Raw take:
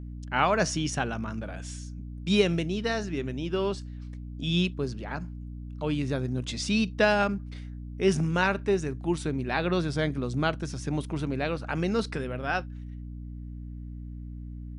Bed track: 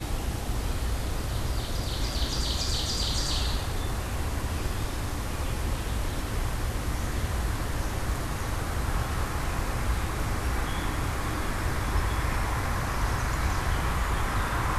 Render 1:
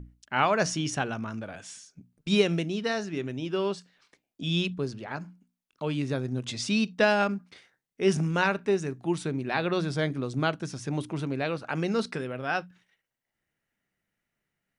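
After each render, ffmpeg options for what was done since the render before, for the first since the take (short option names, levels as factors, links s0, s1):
-af "bandreject=f=60:t=h:w=6,bandreject=f=120:t=h:w=6,bandreject=f=180:t=h:w=6,bandreject=f=240:t=h:w=6,bandreject=f=300:t=h:w=6"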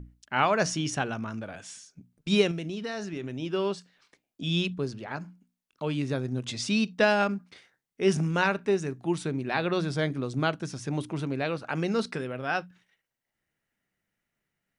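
-filter_complex "[0:a]asettb=1/sr,asplit=3[s0][s1][s2];[s0]atrim=end=2.514[s3];[s1]atrim=start=2.51:end=3.4,asetpts=PTS-STARTPTS,afade=t=in:d=0.004:c=qsin,afade=t=out:st=0.886:d=0.004:c=qsin,acompressor=threshold=0.0316:ratio=6:attack=3.2:release=140:knee=1:detection=peak[s4];[s2]atrim=start=3.396[s5];[s3][s4]acrossfade=d=0.004:c1=hsin:c2=qsin[s6];[s6][s5]acrossfade=d=0.004:c1=qsin:c2=hsin"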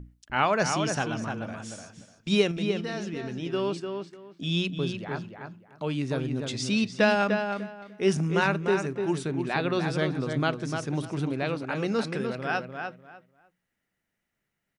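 -filter_complex "[0:a]asplit=2[s0][s1];[s1]adelay=298,lowpass=f=2900:p=1,volume=0.531,asplit=2[s2][s3];[s3]adelay=298,lowpass=f=2900:p=1,volume=0.22,asplit=2[s4][s5];[s5]adelay=298,lowpass=f=2900:p=1,volume=0.22[s6];[s0][s2][s4][s6]amix=inputs=4:normalize=0"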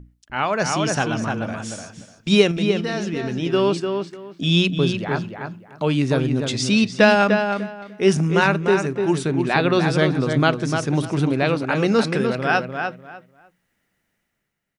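-af "dynaudnorm=f=150:g=9:m=3.16"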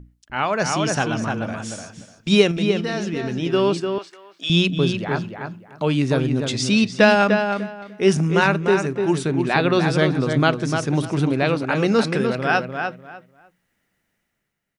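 -filter_complex "[0:a]asettb=1/sr,asplit=3[s0][s1][s2];[s0]atrim=end=3.984[s3];[s1]atrim=start=3.98:end=4.5,asetpts=PTS-STARTPTS,afade=t=in:d=0.004:c=qsin,afade=t=out:st=0.516:d=0.004:c=qsin,highpass=730[s4];[s2]atrim=start=4.496[s5];[s3][s4]acrossfade=d=0.004:c1=hsin:c2=qsin[s6];[s6][s5]acrossfade=d=0.004:c1=qsin:c2=hsin"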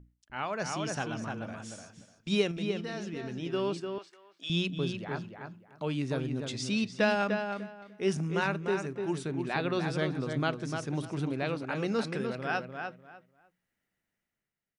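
-af "volume=0.237"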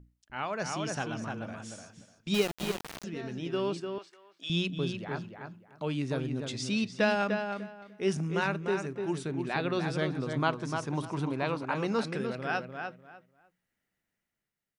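-filter_complex "[0:a]asettb=1/sr,asplit=3[s0][s1][s2];[s0]atrim=end=2.344[s3];[s1]atrim=start=2.34:end=3.04,asetpts=PTS-STARTPTS,afade=t=in:d=0.004:c=qsin,afade=t=out:st=0.696:d=0.004:c=qsin,aeval=exprs='val(0)*gte(abs(val(0)),0.0299)':c=same[s4];[s2]atrim=start=3.036[s5];[s3][s4]acrossfade=d=0.004:c1=hsin:c2=qsin[s6];[s6][s5]acrossfade=d=0.004:c1=qsin:c2=hsin,asettb=1/sr,asplit=3[s7][s8][s9];[s7]atrim=end=10.334[s10];[s8]atrim=start=10.33:end=11.99,asetpts=PTS-STARTPTS,afade=t=in:d=0.004:c=qsin,afade=t=out:st=1.656:d=0.004:c=qsin,equalizer=f=990:t=o:w=0.44:g=11[s11];[s9]atrim=start=11.986[s12];[s10][s11]acrossfade=d=0.004:c1=hsin:c2=qsin[s13];[s13][s12]acrossfade=d=0.004:c1=qsin:c2=hsin"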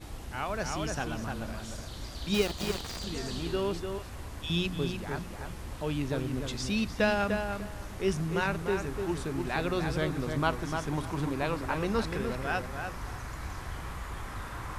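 -filter_complex "[1:a]volume=0.266[s0];[0:a][s0]amix=inputs=2:normalize=0"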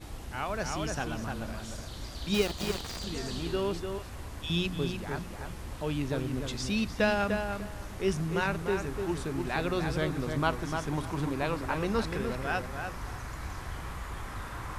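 -af anull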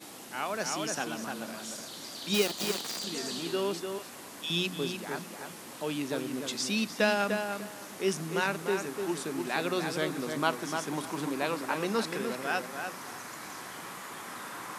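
-af "highpass=f=190:w=0.5412,highpass=f=190:w=1.3066,highshelf=f=4500:g=8.5"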